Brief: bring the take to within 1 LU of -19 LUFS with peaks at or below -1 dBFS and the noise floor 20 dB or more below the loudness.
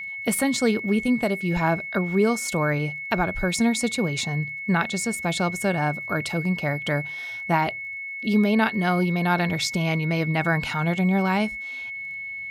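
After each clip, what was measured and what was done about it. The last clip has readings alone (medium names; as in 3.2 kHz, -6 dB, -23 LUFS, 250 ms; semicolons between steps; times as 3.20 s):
tick rate 31 per s; steady tone 2.2 kHz; tone level -31 dBFS; loudness -24.0 LUFS; peak level -9.0 dBFS; loudness target -19.0 LUFS
-> de-click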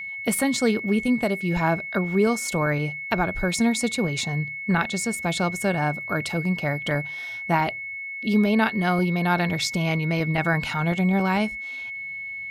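tick rate 0 per s; steady tone 2.2 kHz; tone level -31 dBFS
-> band-stop 2.2 kHz, Q 30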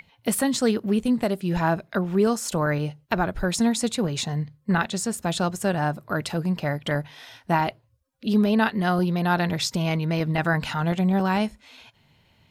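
steady tone not found; loudness -24.5 LUFS; peak level -9.5 dBFS; loudness target -19.0 LUFS
-> trim +5.5 dB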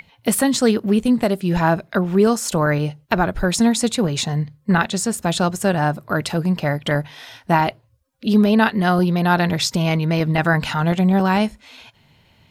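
loudness -19.0 LUFS; peak level -4.0 dBFS; noise floor -57 dBFS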